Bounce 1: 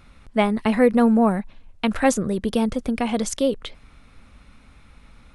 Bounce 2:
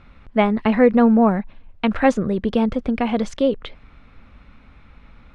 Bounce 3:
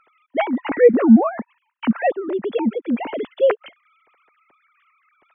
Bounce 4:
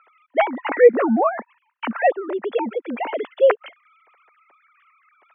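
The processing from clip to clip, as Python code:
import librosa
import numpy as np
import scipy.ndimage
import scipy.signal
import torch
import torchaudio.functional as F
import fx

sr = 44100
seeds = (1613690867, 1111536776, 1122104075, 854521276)

y1 = scipy.signal.sosfilt(scipy.signal.butter(2, 3000.0, 'lowpass', fs=sr, output='sos'), x)
y1 = F.gain(torch.from_numpy(y1), 2.5).numpy()
y2 = fx.sine_speech(y1, sr)
y3 = fx.bandpass_edges(y2, sr, low_hz=510.0, high_hz=2700.0)
y3 = F.gain(torch.from_numpy(y3), 4.0).numpy()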